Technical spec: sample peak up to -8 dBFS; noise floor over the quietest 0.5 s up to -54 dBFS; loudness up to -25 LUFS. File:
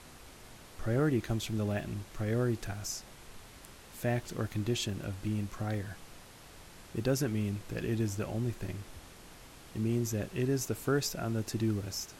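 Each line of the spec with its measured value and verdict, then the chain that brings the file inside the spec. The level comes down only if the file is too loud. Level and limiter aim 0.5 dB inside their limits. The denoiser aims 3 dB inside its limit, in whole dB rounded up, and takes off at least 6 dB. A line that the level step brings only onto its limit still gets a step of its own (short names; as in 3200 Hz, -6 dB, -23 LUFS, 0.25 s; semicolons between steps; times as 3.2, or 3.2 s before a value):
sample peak -17.5 dBFS: OK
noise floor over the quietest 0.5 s -52 dBFS: fail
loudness -34.0 LUFS: OK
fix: denoiser 6 dB, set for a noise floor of -52 dBFS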